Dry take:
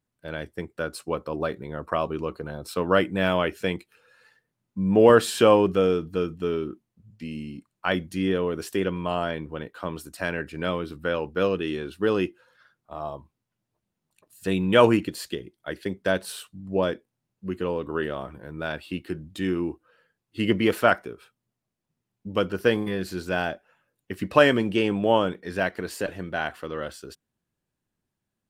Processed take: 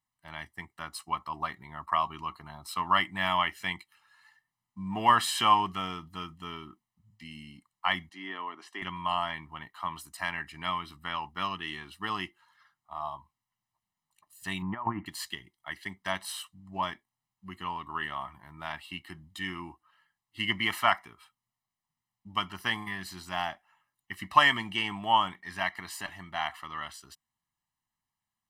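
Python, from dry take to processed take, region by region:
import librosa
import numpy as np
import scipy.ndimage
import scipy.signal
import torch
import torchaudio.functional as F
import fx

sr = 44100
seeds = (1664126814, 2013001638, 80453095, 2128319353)

y = fx.chain(x, sr, fx.highpass(hz=270.0, slope=24),
    fx.spacing_loss(db_at_10k=20), at=(8.09, 8.82))
y = fx.chain(y, sr, fx.lowpass(hz=1400.0, slope=24),
    fx.over_compress(threshold_db=-21.0, ratio=-0.5), at=(14.62, 15.06))
y = fx.low_shelf_res(y, sr, hz=640.0, db=-10.5, q=1.5)
y = y + 0.93 * np.pad(y, (int(1.0 * sr / 1000.0), 0))[:len(y)]
y = fx.dynamic_eq(y, sr, hz=2300.0, q=0.79, threshold_db=-38.0, ratio=4.0, max_db=3)
y = y * librosa.db_to_amplitude(-5.0)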